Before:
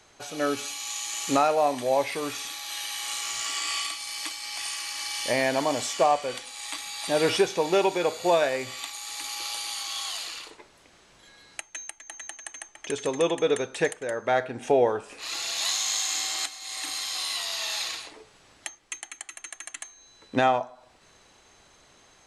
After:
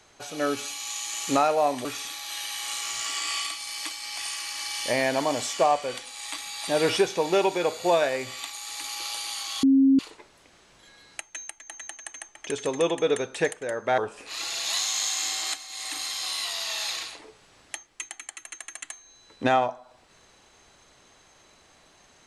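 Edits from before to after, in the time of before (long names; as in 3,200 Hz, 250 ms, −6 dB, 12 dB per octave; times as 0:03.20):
0:01.85–0:02.25: remove
0:10.03–0:10.39: beep over 270 Hz −14.5 dBFS
0:14.38–0:14.90: remove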